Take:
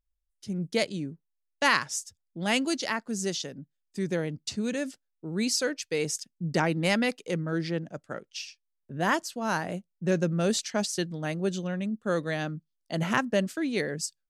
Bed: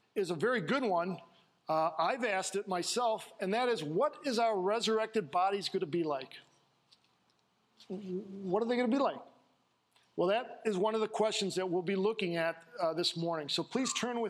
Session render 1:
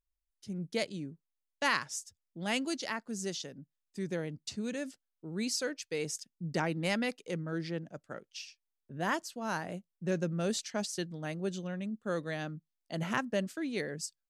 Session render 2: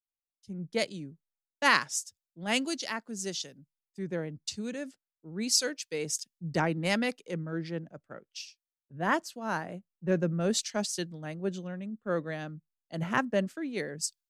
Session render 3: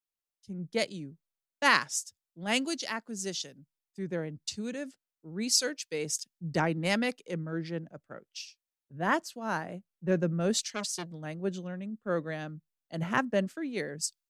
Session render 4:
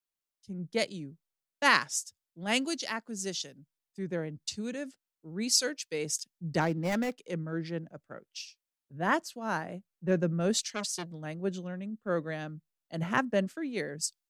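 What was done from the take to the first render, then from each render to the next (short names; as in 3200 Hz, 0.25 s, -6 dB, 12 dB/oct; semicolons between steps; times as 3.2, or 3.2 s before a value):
gain -6.5 dB
in parallel at -3 dB: compressor, threshold -40 dBFS, peak gain reduction 15 dB; on the sum: three-band expander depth 100%
10.57–11.12 core saturation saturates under 1800 Hz
6.61–7.18 median filter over 15 samples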